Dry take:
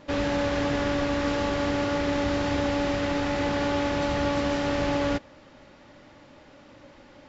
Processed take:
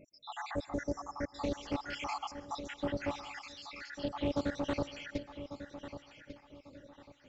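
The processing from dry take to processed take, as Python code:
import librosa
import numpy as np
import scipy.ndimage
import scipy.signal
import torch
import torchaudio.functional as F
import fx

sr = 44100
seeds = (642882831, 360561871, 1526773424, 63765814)

y = fx.spec_dropout(x, sr, seeds[0], share_pct=74)
y = fx.brickwall_bandstop(y, sr, low_hz=2100.0, high_hz=5100.0, at=(0.64, 1.31), fade=0.02)
y = fx.over_compress(y, sr, threshold_db=-35.0, ratio=-0.5, at=(1.93, 2.66))
y = fx.steep_highpass(y, sr, hz=1300.0, slope=48, at=(3.18, 3.93))
y = fx.echo_feedback(y, sr, ms=1146, feedback_pct=30, wet_db=-11.5)
y = fx.rev_plate(y, sr, seeds[1], rt60_s=0.76, hf_ratio=0.8, predelay_ms=110, drr_db=16.5)
y = fx.doppler_dist(y, sr, depth_ms=0.19)
y = F.gain(torch.from_numpy(y), -5.5).numpy()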